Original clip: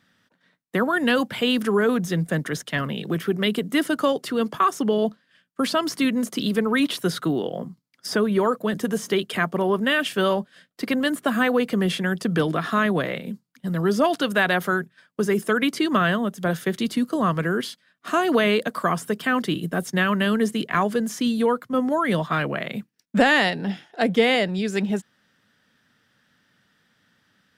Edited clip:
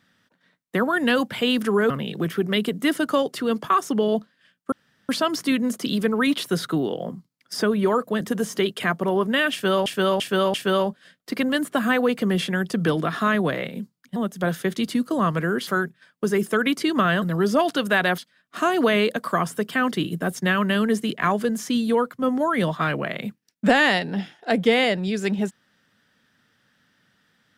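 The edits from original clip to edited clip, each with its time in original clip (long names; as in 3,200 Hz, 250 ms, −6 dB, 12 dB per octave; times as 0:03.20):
0:01.90–0:02.80: remove
0:05.62: splice in room tone 0.37 s
0:10.05–0:10.39: repeat, 4 plays
0:13.67–0:14.63: swap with 0:16.18–0:17.69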